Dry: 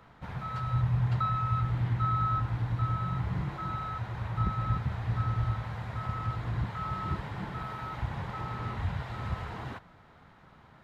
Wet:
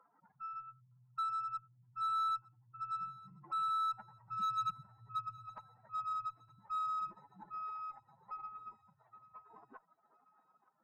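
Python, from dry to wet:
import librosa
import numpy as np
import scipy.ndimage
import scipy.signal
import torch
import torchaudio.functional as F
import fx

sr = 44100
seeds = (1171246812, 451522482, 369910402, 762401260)

y = fx.spec_expand(x, sr, power=2.9)
y = fx.doppler_pass(y, sr, speed_mps=6, closest_m=5.3, pass_at_s=4.8)
y = scipy.signal.sosfilt(scipy.signal.butter(4, 330.0, 'highpass', fs=sr, output='sos'), y)
y = 10.0 ** (-39.0 / 20.0) * np.tanh(y / 10.0 ** (-39.0 / 20.0))
y = fx.cheby_harmonics(y, sr, harmonics=(7, 8), levels_db=(-40, -36), full_scale_db=-39.0)
y = fx.echo_thinned(y, sr, ms=913, feedback_pct=49, hz=1000.0, wet_db=-20.5)
y = y * librosa.db_to_amplitude(8.5)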